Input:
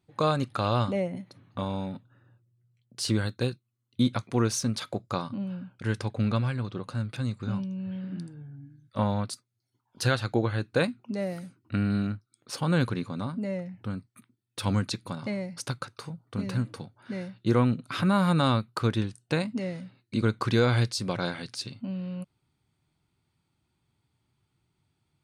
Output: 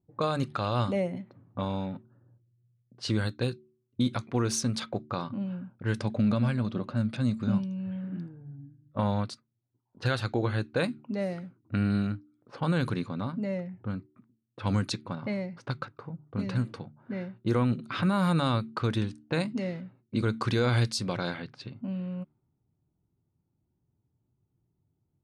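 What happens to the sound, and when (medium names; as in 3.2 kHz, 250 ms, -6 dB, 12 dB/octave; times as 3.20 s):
5.94–7.58 s: small resonant body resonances 220/600 Hz, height 9 dB
whole clip: de-hum 74.93 Hz, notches 5; peak limiter -17.5 dBFS; level-controlled noise filter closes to 520 Hz, open at -24.5 dBFS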